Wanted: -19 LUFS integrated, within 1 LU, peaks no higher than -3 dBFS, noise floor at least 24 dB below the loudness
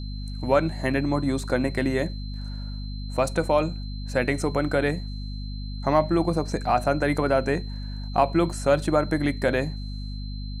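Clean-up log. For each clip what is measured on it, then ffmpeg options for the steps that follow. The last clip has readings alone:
hum 50 Hz; highest harmonic 250 Hz; hum level -30 dBFS; steady tone 4.1 kHz; tone level -44 dBFS; loudness -25.5 LUFS; peak level -7.0 dBFS; loudness target -19.0 LUFS
-> -af "bandreject=f=50:t=h:w=4,bandreject=f=100:t=h:w=4,bandreject=f=150:t=h:w=4,bandreject=f=200:t=h:w=4,bandreject=f=250:t=h:w=4"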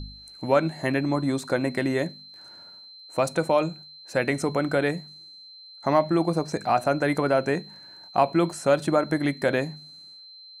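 hum not found; steady tone 4.1 kHz; tone level -44 dBFS
-> -af "bandreject=f=4100:w=30"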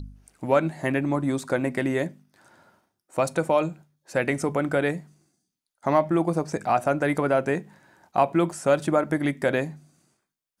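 steady tone not found; loudness -25.0 LUFS; peak level -6.5 dBFS; loudness target -19.0 LUFS
-> -af "volume=2,alimiter=limit=0.708:level=0:latency=1"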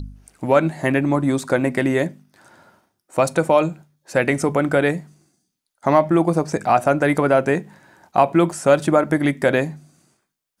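loudness -19.0 LUFS; peak level -3.0 dBFS; noise floor -79 dBFS

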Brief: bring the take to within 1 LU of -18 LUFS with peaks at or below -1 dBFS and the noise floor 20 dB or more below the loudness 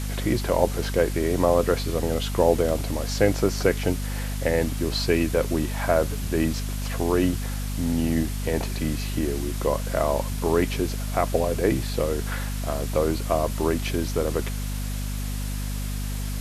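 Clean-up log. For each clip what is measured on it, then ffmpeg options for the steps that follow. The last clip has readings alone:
hum 50 Hz; highest harmonic 250 Hz; hum level -26 dBFS; noise floor -29 dBFS; noise floor target -45 dBFS; loudness -25.0 LUFS; peak level -5.0 dBFS; loudness target -18.0 LUFS
-> -af "bandreject=f=50:t=h:w=4,bandreject=f=100:t=h:w=4,bandreject=f=150:t=h:w=4,bandreject=f=200:t=h:w=4,bandreject=f=250:t=h:w=4"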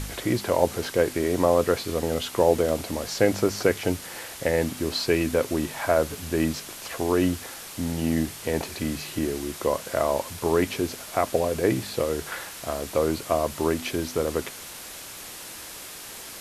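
hum not found; noise floor -40 dBFS; noise floor target -46 dBFS
-> -af "afftdn=nr=6:nf=-40"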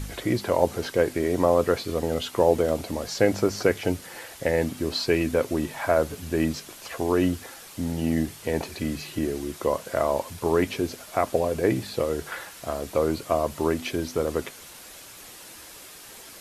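noise floor -45 dBFS; noise floor target -46 dBFS
-> -af "afftdn=nr=6:nf=-45"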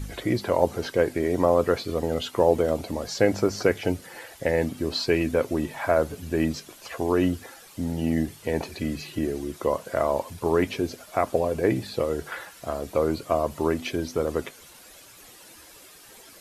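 noise floor -49 dBFS; loudness -26.0 LUFS; peak level -5.5 dBFS; loudness target -18.0 LUFS
-> -af "volume=2.51,alimiter=limit=0.891:level=0:latency=1"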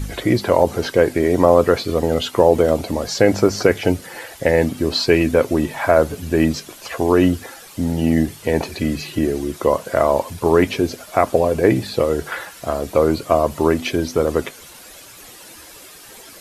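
loudness -18.5 LUFS; peak level -1.0 dBFS; noise floor -41 dBFS

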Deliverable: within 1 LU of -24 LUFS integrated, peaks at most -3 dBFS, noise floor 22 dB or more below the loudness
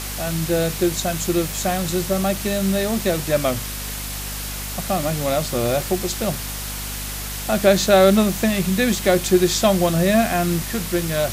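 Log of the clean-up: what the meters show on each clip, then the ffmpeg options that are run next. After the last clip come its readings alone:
hum 50 Hz; highest harmonic 250 Hz; hum level -30 dBFS; noise floor -29 dBFS; noise floor target -43 dBFS; loudness -20.5 LUFS; peak level -3.5 dBFS; loudness target -24.0 LUFS
-> -af "bandreject=f=50:t=h:w=4,bandreject=f=100:t=h:w=4,bandreject=f=150:t=h:w=4,bandreject=f=200:t=h:w=4,bandreject=f=250:t=h:w=4"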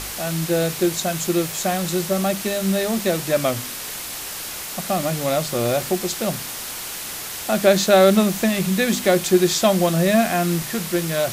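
hum not found; noise floor -31 dBFS; noise floor target -43 dBFS
-> -af "afftdn=nr=12:nf=-31"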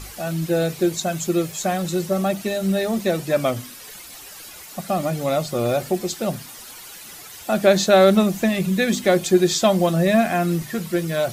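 noise floor -40 dBFS; noise floor target -43 dBFS
-> -af "afftdn=nr=6:nf=-40"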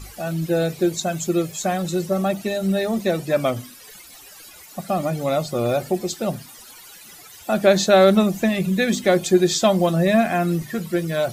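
noise floor -44 dBFS; loudness -20.5 LUFS; peak level -4.0 dBFS; loudness target -24.0 LUFS
-> -af "volume=0.668"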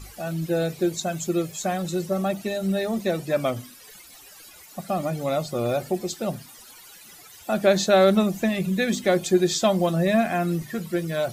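loudness -24.0 LUFS; peak level -7.5 dBFS; noise floor -48 dBFS

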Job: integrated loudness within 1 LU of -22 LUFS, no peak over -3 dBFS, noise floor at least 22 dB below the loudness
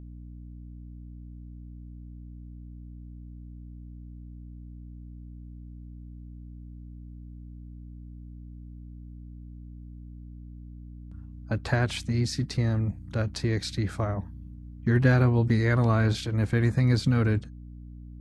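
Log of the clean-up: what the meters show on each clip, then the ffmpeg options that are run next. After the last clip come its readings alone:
hum 60 Hz; highest harmonic 300 Hz; hum level -41 dBFS; loudness -26.0 LUFS; peak level -8.5 dBFS; loudness target -22.0 LUFS
-> -af "bandreject=f=60:t=h:w=4,bandreject=f=120:t=h:w=4,bandreject=f=180:t=h:w=4,bandreject=f=240:t=h:w=4,bandreject=f=300:t=h:w=4"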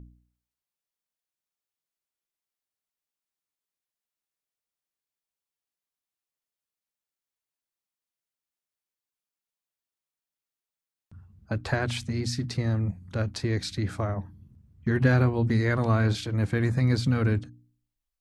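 hum not found; loudness -27.0 LUFS; peak level -9.0 dBFS; loudness target -22.0 LUFS
-> -af "volume=1.78"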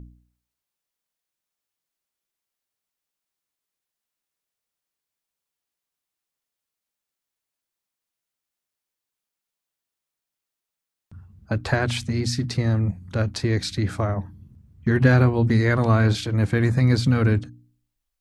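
loudness -22.0 LUFS; peak level -4.0 dBFS; noise floor -86 dBFS

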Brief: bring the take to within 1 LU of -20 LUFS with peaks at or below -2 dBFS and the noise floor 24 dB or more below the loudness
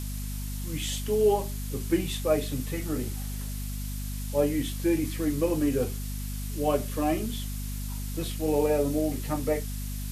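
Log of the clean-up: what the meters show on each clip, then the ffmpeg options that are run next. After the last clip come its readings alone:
hum 50 Hz; highest harmonic 250 Hz; hum level -31 dBFS; noise floor -34 dBFS; noise floor target -53 dBFS; loudness -29.0 LUFS; peak level -12.5 dBFS; loudness target -20.0 LUFS
-> -af "bandreject=f=50:t=h:w=4,bandreject=f=100:t=h:w=4,bandreject=f=150:t=h:w=4,bandreject=f=200:t=h:w=4,bandreject=f=250:t=h:w=4"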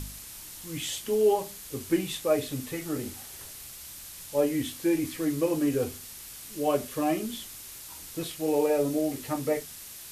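hum not found; noise floor -44 dBFS; noise floor target -53 dBFS
-> -af "afftdn=nr=9:nf=-44"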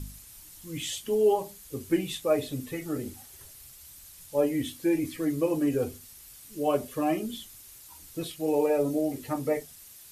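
noise floor -50 dBFS; noise floor target -53 dBFS
-> -af "afftdn=nr=6:nf=-50"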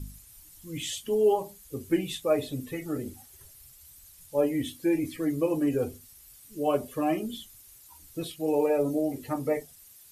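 noise floor -53 dBFS; loudness -29.0 LUFS; peak level -13.0 dBFS; loudness target -20.0 LUFS
-> -af "volume=2.82"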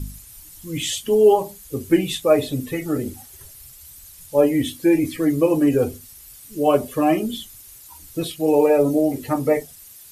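loudness -20.0 LUFS; peak level -4.0 dBFS; noise floor -44 dBFS

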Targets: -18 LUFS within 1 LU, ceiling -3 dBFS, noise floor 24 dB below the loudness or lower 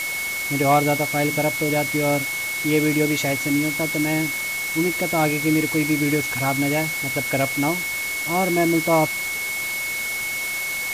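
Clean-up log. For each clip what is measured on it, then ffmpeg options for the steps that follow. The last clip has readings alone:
steady tone 2.2 kHz; tone level -25 dBFS; noise floor -27 dBFS; noise floor target -45 dBFS; loudness -21.0 LUFS; peak level -7.5 dBFS; loudness target -18.0 LUFS
-> -af "bandreject=f=2200:w=30"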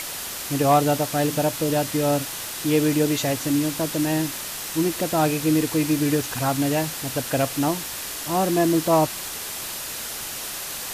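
steady tone not found; noise floor -32 dBFS; noise floor target -47 dBFS
-> -af "afftdn=nr=15:nf=-32"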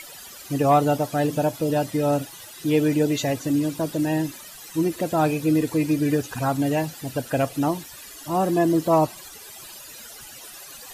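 noise floor -42 dBFS; noise floor target -47 dBFS
-> -af "afftdn=nr=6:nf=-42"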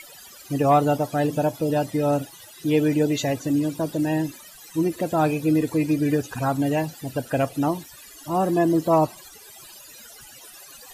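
noise floor -46 dBFS; noise floor target -48 dBFS
-> -af "afftdn=nr=6:nf=-46"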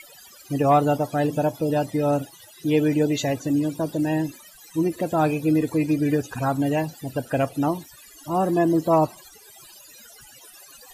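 noise floor -49 dBFS; loudness -23.5 LUFS; peak level -9.0 dBFS; loudness target -18.0 LUFS
-> -af "volume=1.88"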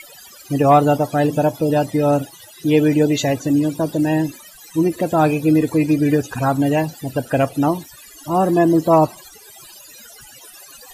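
loudness -18.0 LUFS; peak level -3.5 dBFS; noise floor -43 dBFS

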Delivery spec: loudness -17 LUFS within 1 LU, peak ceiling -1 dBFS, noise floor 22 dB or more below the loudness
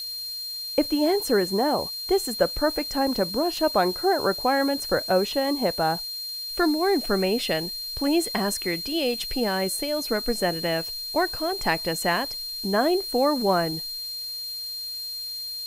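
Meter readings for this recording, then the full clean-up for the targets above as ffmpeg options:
steady tone 4.2 kHz; tone level -31 dBFS; noise floor -34 dBFS; noise floor target -47 dBFS; loudness -25.0 LUFS; peak level -6.5 dBFS; loudness target -17.0 LUFS
-> -af "bandreject=f=4200:w=30"
-af "afftdn=nr=13:nf=-34"
-af "volume=2.51,alimiter=limit=0.891:level=0:latency=1"

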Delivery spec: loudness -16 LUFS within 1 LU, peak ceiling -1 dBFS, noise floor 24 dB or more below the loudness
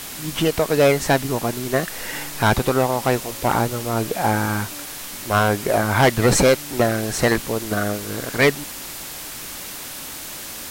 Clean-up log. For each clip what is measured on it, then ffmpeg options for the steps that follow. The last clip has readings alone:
noise floor -34 dBFS; noise floor target -45 dBFS; loudness -21.0 LUFS; peak level -7.5 dBFS; loudness target -16.0 LUFS
-> -af "afftdn=nr=11:nf=-34"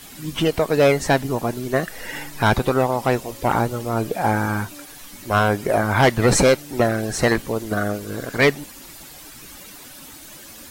noise floor -41 dBFS; noise floor target -45 dBFS
-> -af "afftdn=nr=6:nf=-41"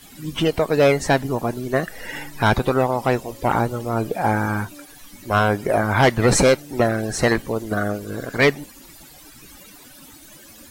noise floor -45 dBFS; loudness -20.5 LUFS; peak level -8.0 dBFS; loudness target -16.0 LUFS
-> -af "volume=1.68"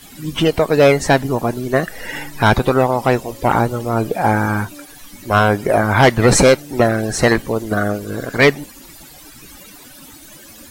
loudness -16.0 LUFS; peak level -3.5 dBFS; noise floor -41 dBFS

